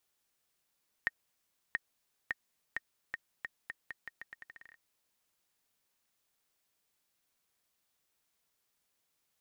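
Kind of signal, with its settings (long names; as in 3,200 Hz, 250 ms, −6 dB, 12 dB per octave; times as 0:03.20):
bouncing ball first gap 0.68 s, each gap 0.82, 1,850 Hz, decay 30 ms −17 dBFS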